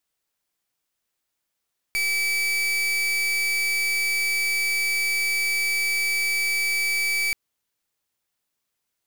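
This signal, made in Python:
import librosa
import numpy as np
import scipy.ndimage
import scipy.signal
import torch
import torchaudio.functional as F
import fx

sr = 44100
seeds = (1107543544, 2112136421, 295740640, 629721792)

y = fx.pulse(sr, length_s=5.38, hz=2300.0, level_db=-23.5, duty_pct=38)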